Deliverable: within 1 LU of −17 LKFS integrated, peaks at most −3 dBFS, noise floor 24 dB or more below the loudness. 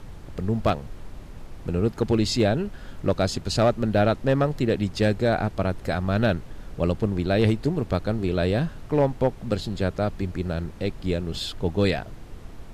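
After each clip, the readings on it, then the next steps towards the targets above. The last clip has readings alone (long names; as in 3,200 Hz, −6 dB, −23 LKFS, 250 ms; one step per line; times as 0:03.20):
share of clipped samples 0.4%; peaks flattened at −12.5 dBFS; background noise floor −41 dBFS; target noise floor −49 dBFS; integrated loudness −25.0 LKFS; sample peak −12.5 dBFS; target loudness −17.0 LKFS
→ clipped peaks rebuilt −12.5 dBFS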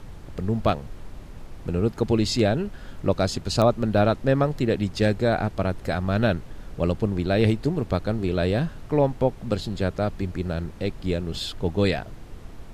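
share of clipped samples 0.0%; background noise floor −41 dBFS; target noise floor −49 dBFS
→ noise reduction from a noise print 8 dB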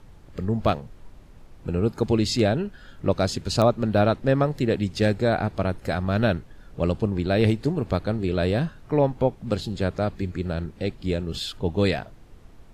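background noise floor −48 dBFS; target noise floor −49 dBFS
→ noise reduction from a noise print 6 dB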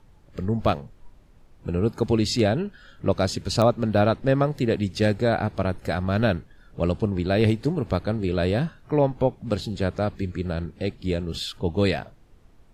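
background noise floor −53 dBFS; integrated loudness −25.0 LKFS; sample peak −7.0 dBFS; target loudness −17.0 LKFS
→ level +8 dB
brickwall limiter −3 dBFS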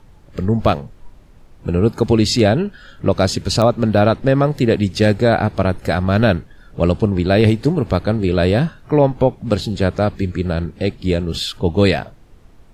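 integrated loudness −17.5 LKFS; sample peak −3.0 dBFS; background noise floor −45 dBFS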